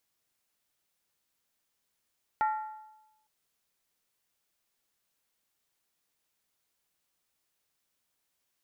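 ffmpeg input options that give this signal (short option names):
-f lavfi -i "aevalsrc='0.0708*pow(10,-3*t/0.99)*sin(2*PI*863*t)+0.0282*pow(10,-3*t/0.784)*sin(2*PI*1375.6*t)+0.0112*pow(10,-3*t/0.677)*sin(2*PI*1843.4*t)+0.00447*pow(10,-3*t/0.653)*sin(2*PI*1981.4*t)+0.00178*pow(10,-3*t/0.608)*sin(2*PI*2289.5*t)':d=0.86:s=44100"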